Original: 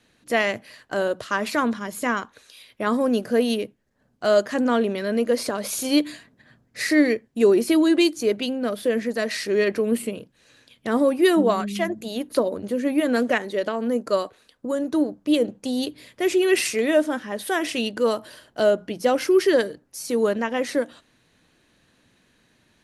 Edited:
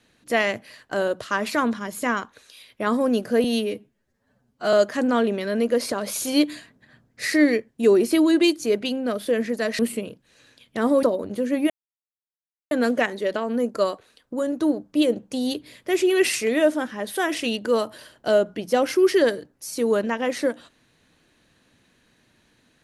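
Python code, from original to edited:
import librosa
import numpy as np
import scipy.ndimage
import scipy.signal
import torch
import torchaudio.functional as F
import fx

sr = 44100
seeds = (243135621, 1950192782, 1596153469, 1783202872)

y = fx.edit(x, sr, fx.stretch_span(start_s=3.44, length_s=0.86, factor=1.5),
    fx.cut(start_s=9.36, length_s=0.53),
    fx.cut(start_s=11.13, length_s=1.23),
    fx.insert_silence(at_s=13.03, length_s=1.01), tone=tone)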